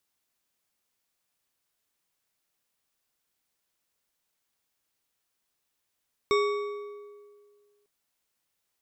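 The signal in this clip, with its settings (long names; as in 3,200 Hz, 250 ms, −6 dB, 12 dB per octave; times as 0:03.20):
struck metal bar, lowest mode 412 Hz, modes 6, decay 1.91 s, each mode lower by 4.5 dB, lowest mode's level −20.5 dB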